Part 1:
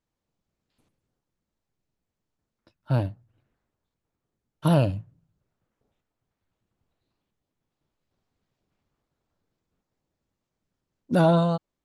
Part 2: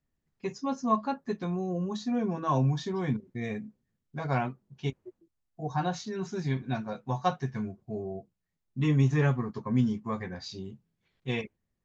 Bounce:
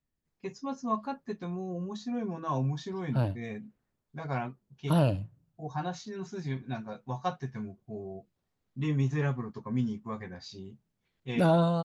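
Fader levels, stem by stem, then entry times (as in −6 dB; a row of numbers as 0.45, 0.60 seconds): −4.5, −4.5 decibels; 0.25, 0.00 seconds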